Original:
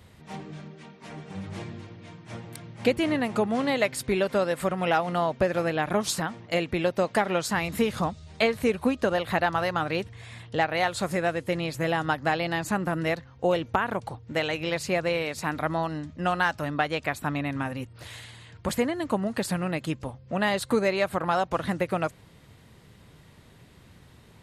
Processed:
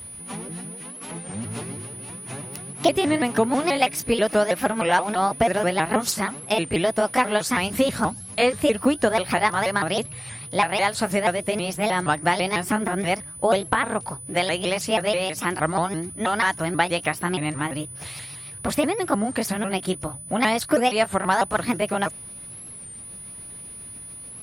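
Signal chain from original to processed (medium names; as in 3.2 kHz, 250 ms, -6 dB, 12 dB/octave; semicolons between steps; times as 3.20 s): sawtooth pitch modulation +4.5 st, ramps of 161 ms; whistle 9.9 kHz -42 dBFS; warped record 33 1/3 rpm, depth 160 cents; trim +5 dB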